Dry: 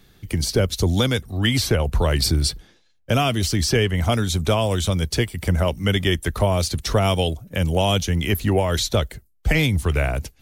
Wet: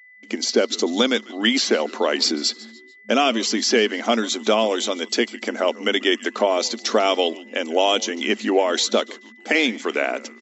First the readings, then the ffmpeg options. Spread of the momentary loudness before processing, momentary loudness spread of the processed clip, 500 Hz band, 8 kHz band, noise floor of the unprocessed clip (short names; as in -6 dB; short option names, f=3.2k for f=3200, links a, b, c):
5 LU, 5 LU, +3.0 dB, +1.0 dB, -59 dBFS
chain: -filter_complex "[0:a]bandreject=f=970:w=28,agate=range=-37dB:threshold=-45dB:ratio=16:detection=peak,asplit=2[a][b];[b]asplit=3[c][d][e];[c]adelay=146,afreqshift=-150,volume=-20.5dB[f];[d]adelay=292,afreqshift=-300,volume=-28.2dB[g];[e]adelay=438,afreqshift=-450,volume=-36dB[h];[f][g][h]amix=inputs=3:normalize=0[i];[a][i]amix=inputs=2:normalize=0,afftfilt=real='re*between(b*sr/4096,210,7700)':imag='im*between(b*sr/4096,210,7700)':win_size=4096:overlap=0.75,aeval=exprs='val(0)+0.00355*sin(2*PI*2000*n/s)':c=same,volume=3dB"